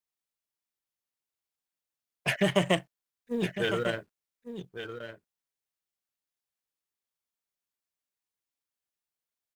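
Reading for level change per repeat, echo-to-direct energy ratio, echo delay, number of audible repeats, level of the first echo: repeats not evenly spaced, −10.0 dB, 1,154 ms, 1, −10.0 dB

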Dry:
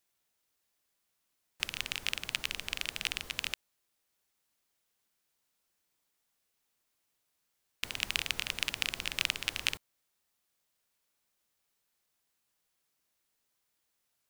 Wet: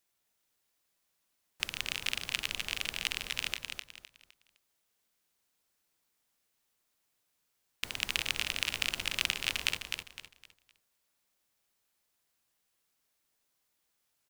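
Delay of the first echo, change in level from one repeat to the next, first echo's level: 256 ms, −10.0 dB, −5.5 dB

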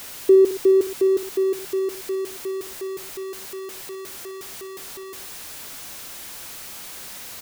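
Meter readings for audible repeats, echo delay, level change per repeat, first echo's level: 2, 61 ms, −4.5 dB, −13.0 dB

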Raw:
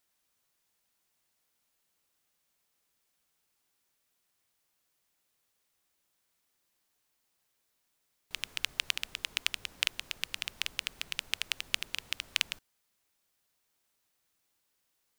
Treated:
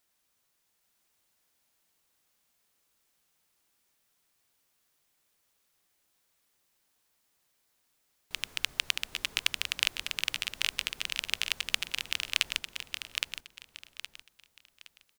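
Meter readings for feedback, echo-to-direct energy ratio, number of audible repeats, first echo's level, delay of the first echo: 29%, −3.5 dB, 3, −4.0 dB, 817 ms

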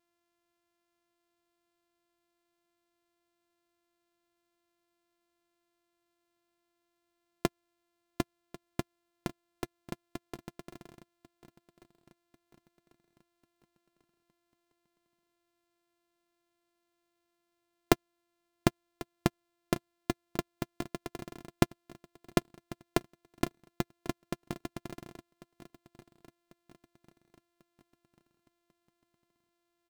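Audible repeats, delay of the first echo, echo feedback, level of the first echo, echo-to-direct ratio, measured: 3, 1,094 ms, 49%, −18.5 dB, −17.5 dB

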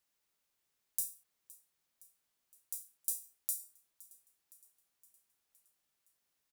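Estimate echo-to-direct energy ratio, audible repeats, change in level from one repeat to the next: −19.0 dB, 4, −4.5 dB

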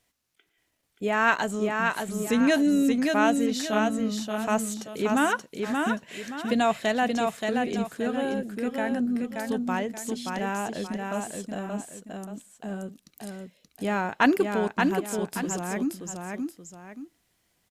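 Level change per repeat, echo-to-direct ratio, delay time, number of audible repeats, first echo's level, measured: −9.0 dB, −3.5 dB, 578 ms, 2, −4.0 dB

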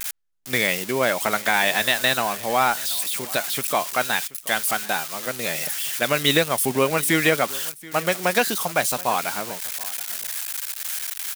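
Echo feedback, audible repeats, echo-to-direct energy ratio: repeats not evenly spaced, 1, −20.5 dB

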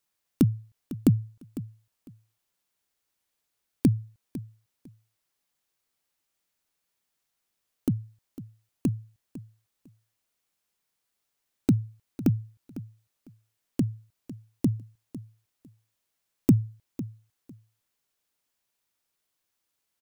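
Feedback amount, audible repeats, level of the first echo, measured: 19%, 2, −15.5 dB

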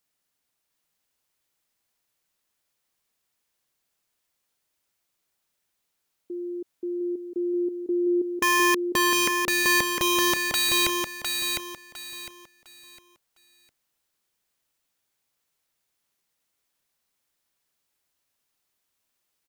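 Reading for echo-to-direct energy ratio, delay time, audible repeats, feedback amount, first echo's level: −4.0 dB, 706 ms, 3, 28%, −4.5 dB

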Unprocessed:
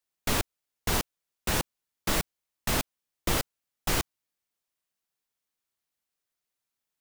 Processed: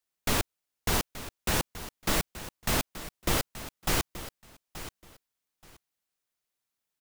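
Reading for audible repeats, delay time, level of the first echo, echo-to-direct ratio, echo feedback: 2, 878 ms, −14.0 dB, −14.0 dB, 20%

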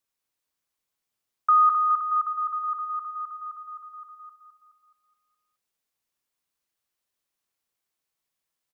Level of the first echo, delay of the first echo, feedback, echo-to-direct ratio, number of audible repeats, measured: −7.0 dB, 211 ms, 51%, −5.5 dB, 5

